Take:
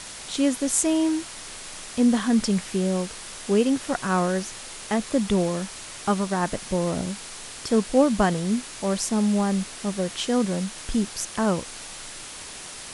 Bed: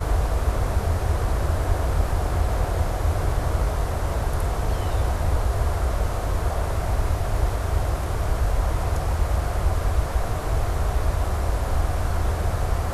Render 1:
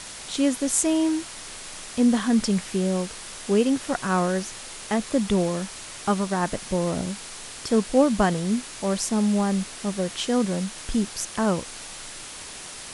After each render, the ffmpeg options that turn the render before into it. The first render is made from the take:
-af anull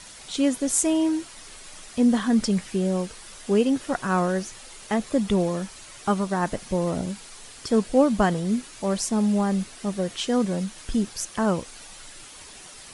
-af "afftdn=nr=8:nf=-39"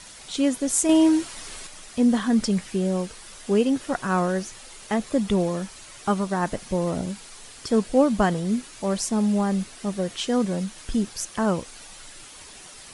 -filter_complex "[0:a]asettb=1/sr,asplit=3[a][b][c];[a]atrim=end=0.894[d];[b]atrim=start=0.89:end=1.67,asetpts=PTS-STARTPTS,afade=t=in:d=0.004:c=qsin,afade=t=out:st=0.776:d=0.004:c=qsin,acontrast=35[e];[c]atrim=start=1.666[f];[d][e]acrossfade=d=0.004:c1=hsin:c2=qsin[g];[g][f]acrossfade=d=0.004:c1=qsin:c2=hsin"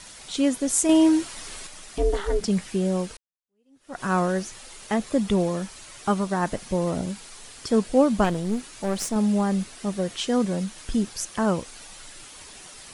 -filter_complex "[0:a]asettb=1/sr,asplit=3[a][b][c];[a]atrim=end=1.984[d];[b]atrim=start=1.98:end=2.48,asetpts=PTS-STARTPTS,afade=t=in:d=0.004:c=qsin,afade=t=out:st=0.496:d=0.004:c=qsin,aeval=exprs='val(0)*sin(2*PI*200*n/s)':c=same[e];[c]atrim=start=2.476[f];[d][e]acrossfade=d=0.004:c1=hsin:c2=qsin[g];[g][f]acrossfade=d=0.004:c1=qsin:c2=hsin,asettb=1/sr,asplit=3[h][i][j];[h]atrim=end=8.244[k];[i]atrim=start=8.24:end=9.16,asetpts=PTS-STARTPTS,afade=t=in:d=0.004:c=qsin,afade=t=out:st=0.916:d=0.004:c=qsin,aeval=exprs='clip(val(0),-1,0.0335)':c=same[l];[j]atrim=start=9.156[m];[k][l]acrossfade=d=0.004:c1=hsin:c2=qsin[n];[n][m]acrossfade=d=0.004:c1=qsin:c2=hsin,asplit=2[o][p];[o]atrim=end=3.17,asetpts=PTS-STARTPTS,afade=t=out:st=3.166:d=0.004:c=hsin[q];[p]atrim=start=3.17,asetpts=PTS-STARTPTS,afade=t=in:d=0.85:c=exp[r];[q][r]concat=n=2:v=0:a=1"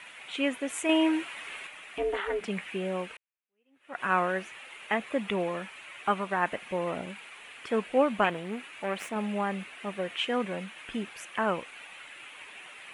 -af "highpass=f=750:p=1,highshelf=f=3.6k:t=q:w=3:g=-12.5"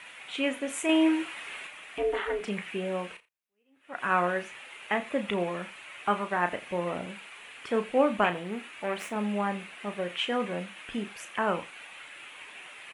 -filter_complex "[0:a]asplit=2[a][b];[b]adelay=34,volume=-9.5dB[c];[a][c]amix=inputs=2:normalize=0,aecho=1:1:85:0.0944"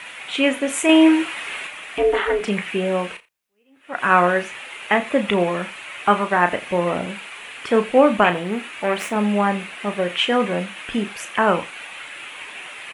-af "volume=10.5dB,alimiter=limit=-2dB:level=0:latency=1"

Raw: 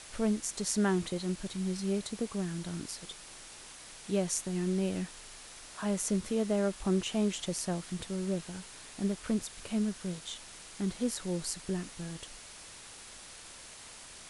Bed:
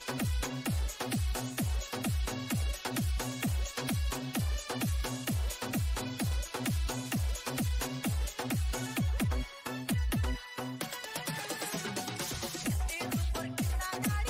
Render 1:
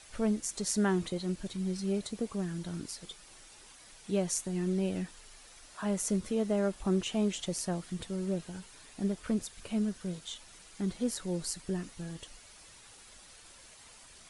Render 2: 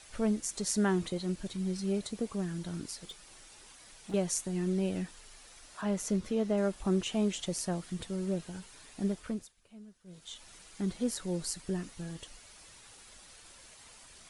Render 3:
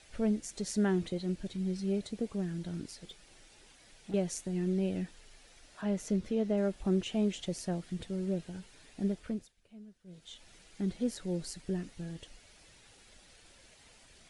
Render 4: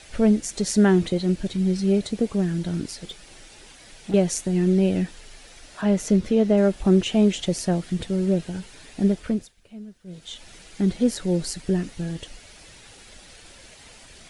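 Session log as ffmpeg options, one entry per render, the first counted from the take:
-af "afftdn=nr=8:nf=-50"
-filter_complex "[0:a]asettb=1/sr,asplit=3[a][b][c];[a]atrim=end=2.994[d];[b]atrim=start=2.99:end=4.14,asetpts=PTS-STARTPTS,afade=t=in:d=0.004:c=qsin,afade=t=out:st=1.146:d=0.004:c=qsin,asoftclip=type=hard:threshold=-38dB[e];[c]atrim=start=4.136[f];[d][e]acrossfade=d=0.004:c1=hsin:c2=qsin[g];[g][f]acrossfade=d=0.004:c1=qsin:c2=hsin,asettb=1/sr,asplit=3[h][i][j];[h]atrim=end=5.814[k];[i]atrim=start=5.81:end=6.58,asetpts=PTS-STARTPTS,afade=t=in:d=0.004:c=qsin,afade=t=out:st=0.766:d=0.004:c=qsin,equalizer=f=9.3k:t=o:w=0.77:g=-7[l];[j]atrim=start=6.576[m];[k][l]acrossfade=d=0.004:c1=hsin:c2=qsin[n];[n][m]acrossfade=d=0.004:c1=qsin:c2=hsin,asplit=3[o][p][q];[o]atrim=end=9.54,asetpts=PTS-STARTPTS,afade=t=out:st=9.12:d=0.42:silence=0.1[r];[p]atrim=start=9.54:end=10.05,asetpts=PTS-STARTPTS,volume=-20dB[s];[q]atrim=start=10.05,asetpts=PTS-STARTPTS,afade=t=in:d=0.42:silence=0.1[t];[r][s][t]concat=n=3:v=0:a=1"
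-af "lowpass=f=3.3k:p=1,equalizer=f=1.1k:t=o:w=0.79:g=-8"
-af "volume=12dB"

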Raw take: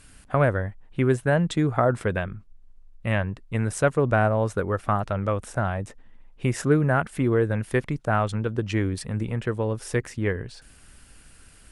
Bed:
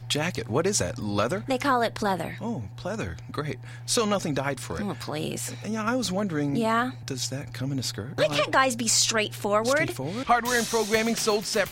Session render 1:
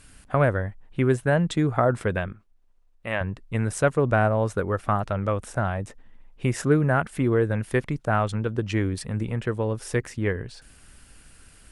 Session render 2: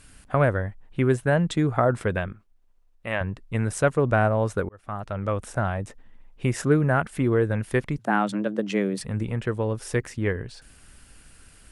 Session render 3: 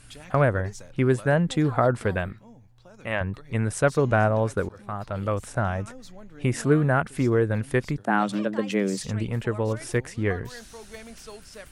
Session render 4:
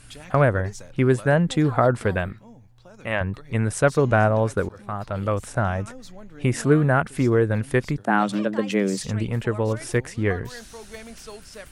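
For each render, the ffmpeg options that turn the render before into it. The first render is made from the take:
-filter_complex "[0:a]asettb=1/sr,asplit=3[a][b][c];[a]atrim=end=2.324[d];[b]atrim=start=2.32:end=3.21,asetpts=PTS-STARTPTS,afade=t=in:d=0.004:c=qsin,afade=t=out:st=0.886:d=0.004:c=qsin,bass=f=250:g=-13,treble=f=4k:g=-3[e];[c]atrim=start=3.206[f];[d][e]acrossfade=d=0.004:c1=hsin:c2=qsin[g];[g][f]acrossfade=d=0.004:c1=qsin:c2=hsin"
-filter_complex "[0:a]asettb=1/sr,asplit=3[a][b][c];[a]atrim=end=7.984[d];[b]atrim=start=7.98:end=9.01,asetpts=PTS-STARTPTS,afade=t=in:d=0.004:c=qsin,afade=t=out:st=1.026:d=0.004:c=qsin,afreqshift=99[e];[c]atrim=start=9.006[f];[d][e]acrossfade=d=0.004:c1=hsin:c2=qsin[g];[g][f]acrossfade=d=0.004:c1=qsin:c2=hsin,asplit=2[h][i];[h]atrim=end=4.69,asetpts=PTS-STARTPTS,afade=t=out:st=4.686:d=0.004:c=hsin[j];[i]atrim=start=4.69,asetpts=PTS-STARTPTS,afade=t=in:d=0.7[k];[j][k]concat=n=2:v=0:a=1"
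-filter_complex "[1:a]volume=-19dB[a];[0:a][a]amix=inputs=2:normalize=0"
-af "volume=2.5dB"

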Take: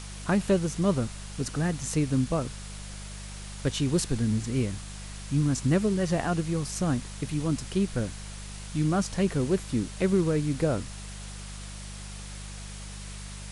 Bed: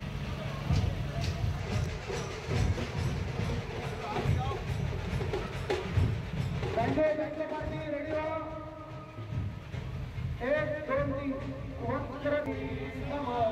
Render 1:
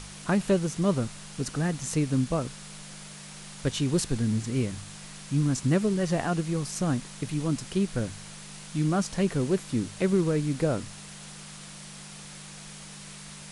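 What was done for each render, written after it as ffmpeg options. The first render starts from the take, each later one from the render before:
-af "bandreject=f=50:t=h:w=4,bandreject=f=100:t=h:w=4"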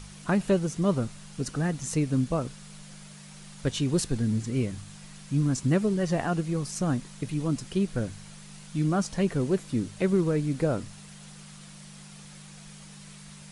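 -af "afftdn=nr=6:nf=-44"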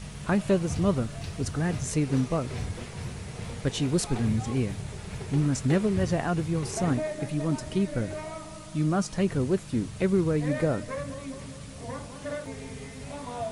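-filter_complex "[1:a]volume=-4.5dB[a];[0:a][a]amix=inputs=2:normalize=0"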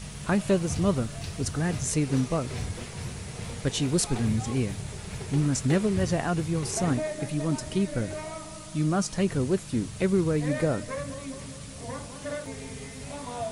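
-af "highshelf=f=4.2k:g=6"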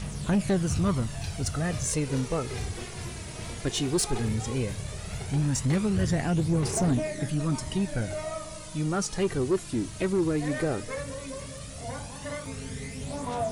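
-af "aphaser=in_gain=1:out_gain=1:delay=3.2:decay=0.47:speed=0.15:type=triangular,asoftclip=type=tanh:threshold=-18dB"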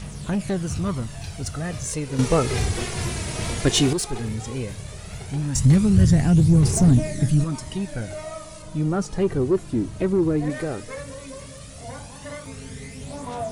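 -filter_complex "[0:a]asettb=1/sr,asplit=3[a][b][c];[a]atrim=end=5.554[d];[b]atrim=start=5.55:end=7.44,asetpts=PTS-STARTPTS,afade=t=in:d=0.004:c=qsin,afade=t=out:st=1.886:d=0.004:c=qsin,bass=f=250:g=13,treble=f=4k:g=6[e];[c]atrim=start=7.436[f];[d][e]acrossfade=d=0.004:c1=hsin:c2=qsin[g];[g][f]acrossfade=d=0.004:c1=qsin:c2=hsin,asettb=1/sr,asplit=3[h][i][j];[h]atrim=end=8.624[k];[i]atrim=start=8.62:end=10.5,asetpts=PTS-STARTPTS,afade=t=in:d=0.004:c=qsin,afade=t=out:st=1.876:d=0.004:c=qsin,tiltshelf=f=1.4k:g=6[l];[j]atrim=start=10.496[m];[k][l]acrossfade=d=0.004:c1=hsin:c2=qsin[n];[n][m]acrossfade=d=0.004:c1=qsin:c2=hsin,asplit=3[o][p][q];[o]atrim=end=2.192[r];[p]atrim=start=2.188:end=3.932,asetpts=PTS-STARTPTS,volume=10dB[s];[q]atrim=start=3.928[t];[r][s]acrossfade=d=0.004:c1=hsin:c2=hsin[u];[u][t]acrossfade=d=0.004:c1=hsin:c2=hsin"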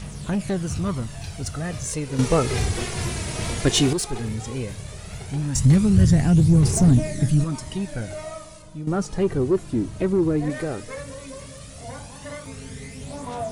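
-filter_complex "[0:a]asplit=2[a][b];[a]atrim=end=8.87,asetpts=PTS-STARTPTS,afade=t=out:st=8.27:d=0.6:silence=0.266073[c];[b]atrim=start=8.87,asetpts=PTS-STARTPTS,afade=t=in:d=0.004:c=hsin:silence=0.266073[d];[c][d]concat=n=2:v=0:a=1"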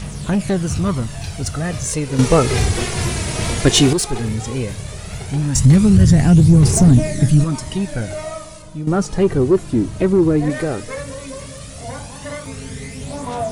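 -af "volume=6.5dB,alimiter=limit=-3dB:level=0:latency=1"

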